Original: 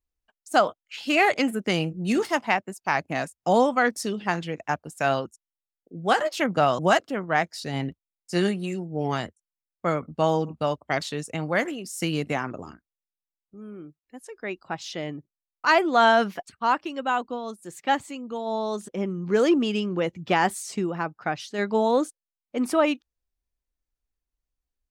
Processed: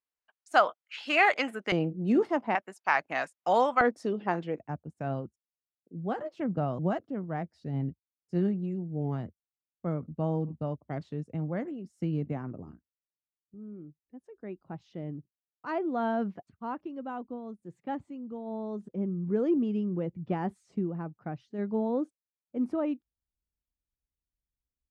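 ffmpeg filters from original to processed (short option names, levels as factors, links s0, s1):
-af "asetnsamples=n=441:p=0,asendcmd='1.72 bandpass f 330;2.55 bandpass f 1400;3.81 bandpass f 450;4.59 bandpass f 120',bandpass=f=1400:t=q:w=0.7:csg=0"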